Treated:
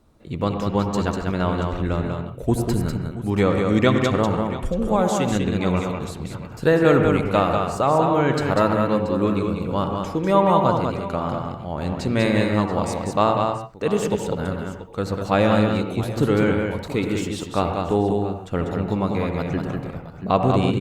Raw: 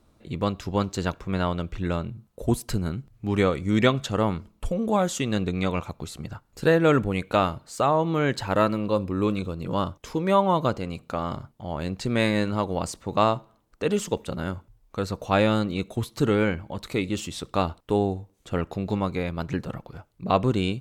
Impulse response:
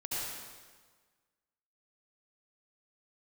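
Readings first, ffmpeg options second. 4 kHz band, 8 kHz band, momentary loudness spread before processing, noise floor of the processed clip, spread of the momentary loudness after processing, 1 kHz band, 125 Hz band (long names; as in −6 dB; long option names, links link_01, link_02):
+1.0 dB, +1.5 dB, 11 LU, −37 dBFS, 9 LU, +4.5 dB, +4.5 dB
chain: -filter_complex "[0:a]aecho=1:1:195|681:0.596|0.168,asplit=2[link_01][link_02];[1:a]atrim=start_sample=2205,afade=type=out:start_time=0.2:duration=0.01,atrim=end_sample=9261,lowpass=2100[link_03];[link_02][link_03]afir=irnorm=-1:irlink=0,volume=-4.5dB[link_04];[link_01][link_04]amix=inputs=2:normalize=0" -ar 48000 -c:a libopus -b:a 64k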